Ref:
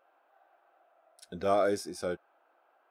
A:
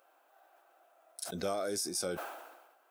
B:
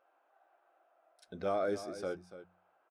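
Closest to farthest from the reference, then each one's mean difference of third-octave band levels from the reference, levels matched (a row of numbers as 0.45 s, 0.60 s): B, A; 3.0 dB, 7.0 dB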